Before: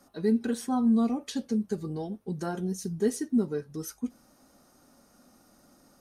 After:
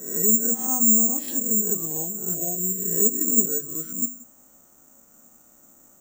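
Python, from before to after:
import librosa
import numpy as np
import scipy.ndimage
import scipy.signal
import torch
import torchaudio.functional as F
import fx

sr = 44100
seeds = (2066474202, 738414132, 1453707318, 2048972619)

p1 = fx.spec_swells(x, sr, rise_s=0.72)
p2 = fx.env_lowpass_down(p1, sr, base_hz=650.0, full_db=-20.5)
p3 = fx.hum_notches(p2, sr, base_hz=50, count=5)
p4 = fx.spec_erase(p3, sr, start_s=2.34, length_s=0.29, low_hz=750.0, high_hz=10000.0)
p5 = (np.kron(scipy.signal.resample_poly(p4, 1, 6), np.eye(6)[0]) * 6)[:len(p4)]
p6 = p5 + fx.echo_feedback(p5, sr, ms=178, feedback_pct=16, wet_db=-22.0, dry=0)
y = p6 * 10.0 ** (-2.5 / 20.0)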